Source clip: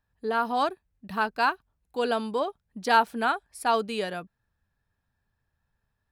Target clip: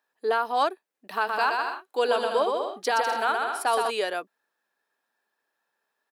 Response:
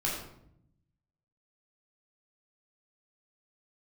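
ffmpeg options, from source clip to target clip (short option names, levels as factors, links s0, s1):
-filter_complex "[0:a]highpass=f=340:w=0.5412,highpass=f=340:w=1.3066,alimiter=limit=0.112:level=0:latency=1:release=458,asplit=3[s0][s1][s2];[s0]afade=t=out:st=1.26:d=0.02[s3];[s1]aecho=1:1:120|198|248.7|281.7|303.1:0.631|0.398|0.251|0.158|0.1,afade=t=in:st=1.26:d=0.02,afade=t=out:st=3.89:d=0.02[s4];[s2]afade=t=in:st=3.89:d=0.02[s5];[s3][s4][s5]amix=inputs=3:normalize=0,volume=1.78"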